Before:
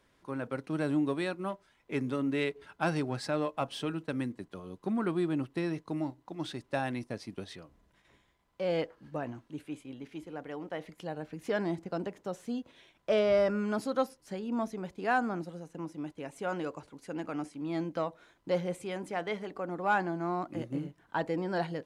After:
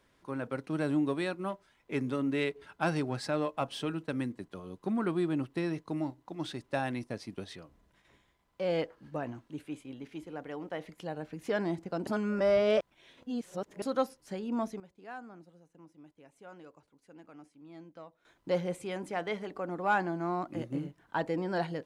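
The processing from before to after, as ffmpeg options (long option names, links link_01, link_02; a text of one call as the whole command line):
ffmpeg -i in.wav -filter_complex "[0:a]asplit=5[link_01][link_02][link_03][link_04][link_05];[link_01]atrim=end=12.072[link_06];[link_02]atrim=start=12.068:end=13.822,asetpts=PTS-STARTPTS,areverse[link_07];[link_03]atrim=start=13.818:end=14.8,asetpts=PTS-STARTPTS,afade=type=out:start_time=0.732:duration=0.25:curve=log:silence=0.158489[link_08];[link_04]atrim=start=14.8:end=18.25,asetpts=PTS-STARTPTS,volume=-16dB[link_09];[link_05]atrim=start=18.25,asetpts=PTS-STARTPTS,afade=type=in:duration=0.25:curve=log:silence=0.158489[link_10];[link_06][link_07]acrossfade=duration=0.004:curve1=hsin:curve2=hsin[link_11];[link_08][link_09][link_10]concat=n=3:v=0:a=1[link_12];[link_11][link_12]acrossfade=duration=0.004:curve1=hsin:curve2=hsin" out.wav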